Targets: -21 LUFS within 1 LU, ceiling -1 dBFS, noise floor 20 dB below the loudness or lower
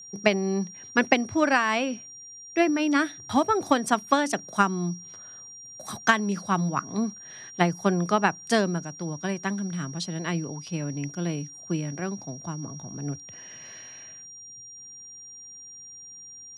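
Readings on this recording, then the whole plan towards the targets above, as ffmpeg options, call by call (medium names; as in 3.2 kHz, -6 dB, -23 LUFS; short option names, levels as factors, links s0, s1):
steady tone 5.7 kHz; tone level -42 dBFS; loudness -26.5 LUFS; peak level -4.5 dBFS; loudness target -21.0 LUFS
-> -af "bandreject=f=5700:w=30"
-af "volume=1.88,alimiter=limit=0.891:level=0:latency=1"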